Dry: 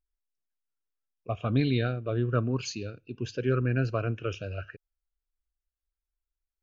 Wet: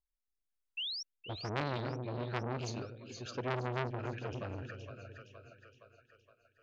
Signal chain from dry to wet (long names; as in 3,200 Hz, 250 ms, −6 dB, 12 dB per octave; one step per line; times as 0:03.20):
0:00.77–0:01.03: sound drawn into the spectrogram rise 2,600–5,800 Hz −33 dBFS
on a send: echo with a time of its own for lows and highs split 540 Hz, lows 279 ms, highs 467 ms, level −8 dB
on the sum: rotating-speaker cabinet horn 1.1 Hz, later 6.3 Hz, at 0:03.90
0:02.82–0:03.35: low-shelf EQ 410 Hz −8 dB
saturating transformer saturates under 1,700 Hz
level −3 dB